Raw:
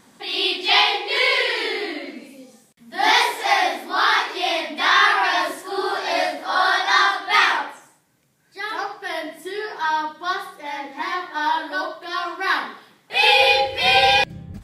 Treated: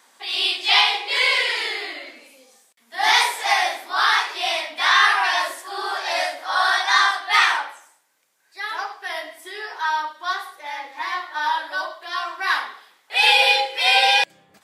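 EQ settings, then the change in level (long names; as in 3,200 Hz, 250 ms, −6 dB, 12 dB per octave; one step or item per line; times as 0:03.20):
high-pass filter 700 Hz 12 dB per octave
dynamic equaliser 8,300 Hz, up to +6 dB, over −40 dBFS, Q 1.3
0.0 dB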